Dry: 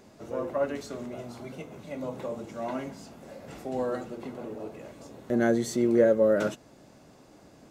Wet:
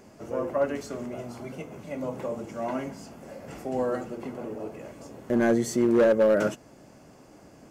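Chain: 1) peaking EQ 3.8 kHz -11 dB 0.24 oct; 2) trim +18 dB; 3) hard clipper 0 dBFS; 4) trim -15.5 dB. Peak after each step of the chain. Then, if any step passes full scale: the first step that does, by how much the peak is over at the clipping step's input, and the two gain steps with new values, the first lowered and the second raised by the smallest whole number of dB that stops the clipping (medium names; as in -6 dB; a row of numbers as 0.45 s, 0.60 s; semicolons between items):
-10.5 dBFS, +7.5 dBFS, 0.0 dBFS, -15.5 dBFS; step 2, 7.5 dB; step 2 +10 dB, step 4 -7.5 dB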